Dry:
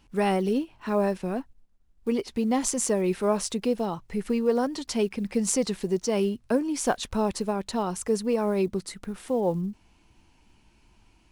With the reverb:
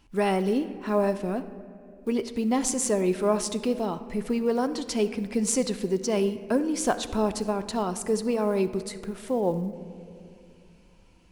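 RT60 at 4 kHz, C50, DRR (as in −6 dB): 1.5 s, 12.5 dB, 10.0 dB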